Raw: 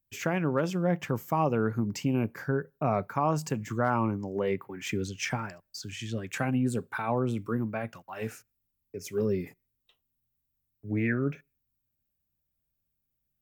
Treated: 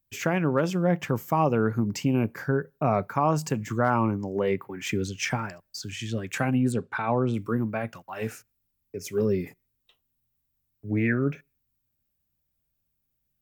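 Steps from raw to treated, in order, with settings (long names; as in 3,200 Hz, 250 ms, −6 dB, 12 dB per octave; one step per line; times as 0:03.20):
0:06.72–0:07.34: low-pass filter 5,300 Hz 12 dB per octave
level +3.5 dB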